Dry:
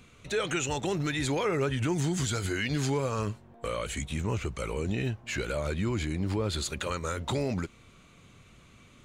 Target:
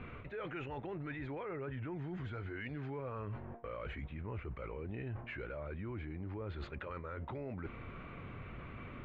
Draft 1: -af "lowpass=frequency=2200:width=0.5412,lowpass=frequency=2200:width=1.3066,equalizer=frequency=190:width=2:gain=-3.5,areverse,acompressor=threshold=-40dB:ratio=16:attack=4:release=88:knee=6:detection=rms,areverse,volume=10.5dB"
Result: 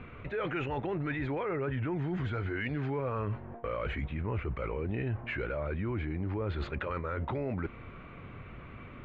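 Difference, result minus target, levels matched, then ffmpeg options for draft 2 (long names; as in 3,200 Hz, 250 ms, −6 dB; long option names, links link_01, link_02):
downward compressor: peak gain reduction −9 dB
-af "lowpass=frequency=2200:width=0.5412,lowpass=frequency=2200:width=1.3066,equalizer=frequency=190:width=2:gain=-3.5,areverse,acompressor=threshold=-49.5dB:ratio=16:attack=4:release=88:knee=6:detection=rms,areverse,volume=10.5dB"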